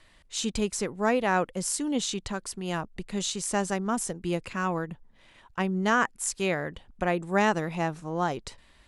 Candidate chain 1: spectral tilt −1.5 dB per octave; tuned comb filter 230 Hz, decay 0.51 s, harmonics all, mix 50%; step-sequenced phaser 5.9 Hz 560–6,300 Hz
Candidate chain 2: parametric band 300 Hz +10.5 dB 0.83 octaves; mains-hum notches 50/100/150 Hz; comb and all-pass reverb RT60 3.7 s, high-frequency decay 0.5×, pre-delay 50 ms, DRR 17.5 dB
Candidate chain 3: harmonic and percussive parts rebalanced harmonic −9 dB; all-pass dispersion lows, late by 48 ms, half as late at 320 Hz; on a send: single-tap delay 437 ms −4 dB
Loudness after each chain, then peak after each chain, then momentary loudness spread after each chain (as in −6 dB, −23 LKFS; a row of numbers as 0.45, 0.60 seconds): −36.0, −25.5, −32.0 LKFS; −18.5, −8.0, −14.5 dBFS; 11, 9, 8 LU